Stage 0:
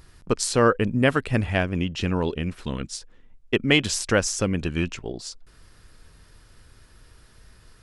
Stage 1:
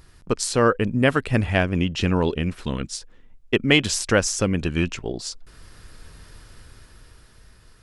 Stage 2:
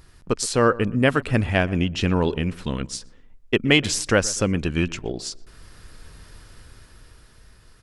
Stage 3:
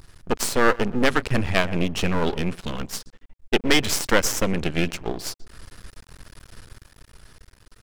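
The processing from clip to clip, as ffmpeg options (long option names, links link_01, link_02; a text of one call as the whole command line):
ffmpeg -i in.wav -af "dynaudnorm=framelen=290:gausssize=9:maxgain=8dB" out.wav
ffmpeg -i in.wav -filter_complex "[0:a]asplit=2[link_01][link_02];[link_02]adelay=122,lowpass=frequency=1600:poles=1,volume=-19.5dB,asplit=2[link_03][link_04];[link_04]adelay=122,lowpass=frequency=1600:poles=1,volume=0.37,asplit=2[link_05][link_06];[link_06]adelay=122,lowpass=frequency=1600:poles=1,volume=0.37[link_07];[link_01][link_03][link_05][link_07]amix=inputs=4:normalize=0" out.wav
ffmpeg -i in.wav -af "aeval=exprs='max(val(0),0)':channel_layout=same,volume=4.5dB" out.wav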